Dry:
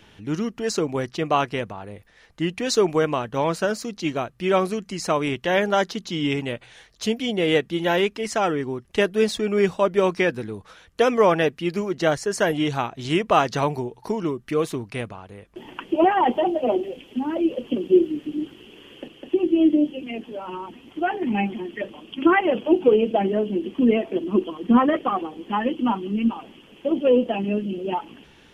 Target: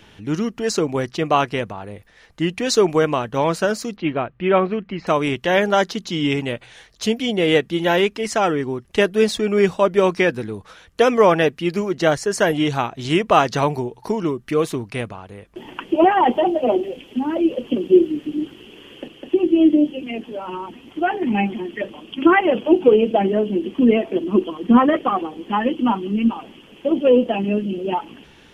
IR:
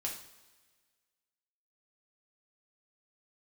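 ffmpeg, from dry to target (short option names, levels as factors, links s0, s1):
-filter_complex "[0:a]asettb=1/sr,asplit=3[s0][s1][s2];[s0]atrim=end=3.964[s3];[s1]atrim=start=3.96:end=5.07,asetpts=PTS-STARTPTS,afade=t=in:d=0.004:c=qsin,afade=t=out:st=1.106:d=0.004:c=qsin,lowpass=f=2900:w=0.5412,lowpass=f=2900:w=1.3066[s4];[s2]atrim=start=5.066[s5];[s3][s4]acrossfade=d=0.004:c1=hsin:c2=qsin[s6];[s6][s5]acrossfade=d=0.004:c1=qsin:c2=hsin,volume=1.5"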